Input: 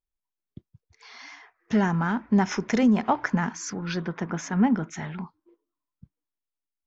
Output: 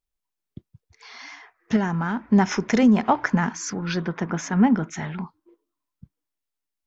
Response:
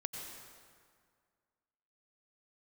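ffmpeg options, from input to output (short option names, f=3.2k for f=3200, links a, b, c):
-filter_complex "[0:a]asettb=1/sr,asplit=3[a][b][c];[a]atrim=end=1.764[d];[b]atrim=start=1.76:end=2.28,asetpts=PTS-STARTPTS,afade=t=in:d=0.004:c=qsin,afade=t=out:st=0.516:d=0.004:c=qsin,acompressor=threshold=-31dB:ratio=1.5[e];[c]atrim=start=2.276[f];[d][e]acrossfade=d=0.004:c1=hsin:c2=qsin[g];[g][f]acrossfade=d=0.004:c1=qsin:c2=hsin,volume=3.5dB"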